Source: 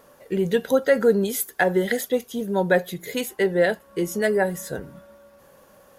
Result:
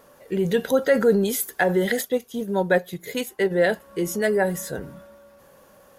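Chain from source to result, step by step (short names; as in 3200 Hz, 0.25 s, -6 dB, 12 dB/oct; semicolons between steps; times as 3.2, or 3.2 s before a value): transient shaper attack -1 dB, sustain +4 dB, from 2.01 s sustain -5 dB, from 3.5 s sustain +3 dB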